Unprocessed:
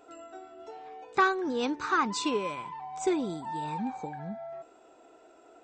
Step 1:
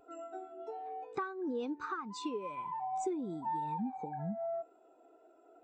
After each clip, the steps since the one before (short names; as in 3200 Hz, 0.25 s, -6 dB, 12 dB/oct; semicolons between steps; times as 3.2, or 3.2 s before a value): compressor 12:1, threshold -38 dBFS, peak gain reduction 20 dB; spectral expander 1.5:1; gain +1 dB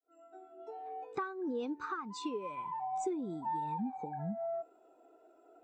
opening faded in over 1.00 s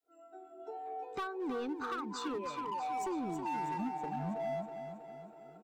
hard clip -36 dBFS, distortion -12 dB; feedback echo 0.322 s, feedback 55%, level -8 dB; gain +1.5 dB